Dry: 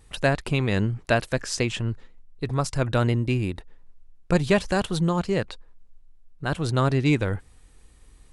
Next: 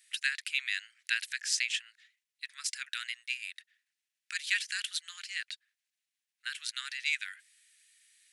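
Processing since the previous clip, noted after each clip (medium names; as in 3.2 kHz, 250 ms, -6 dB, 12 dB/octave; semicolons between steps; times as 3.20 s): steep high-pass 1.7 kHz 48 dB/octave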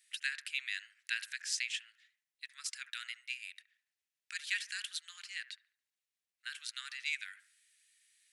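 feedback echo behind a low-pass 71 ms, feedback 37%, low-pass 1.1 kHz, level -8 dB; trim -5.5 dB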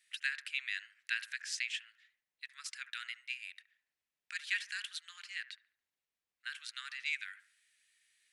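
treble shelf 3.7 kHz -10.5 dB; trim +3.5 dB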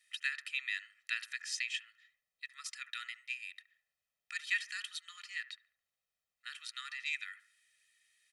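comb 1.6 ms, depth 84%; trim -2 dB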